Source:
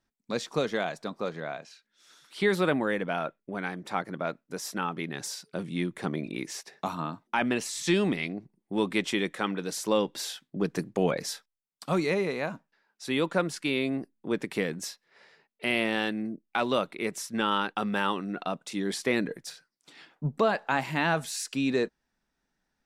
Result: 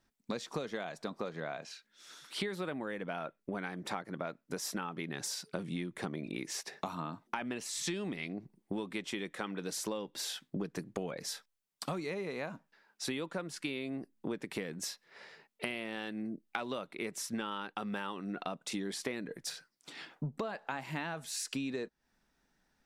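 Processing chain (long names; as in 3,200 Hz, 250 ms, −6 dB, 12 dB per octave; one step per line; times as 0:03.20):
downward compressor 16 to 1, threshold −38 dBFS, peak gain reduction 19.5 dB
level +4 dB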